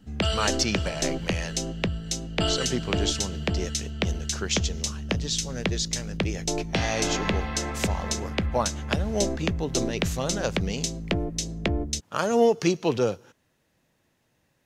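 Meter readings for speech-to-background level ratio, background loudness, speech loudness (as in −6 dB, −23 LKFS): −0.5 dB, −29.0 LKFS, −29.5 LKFS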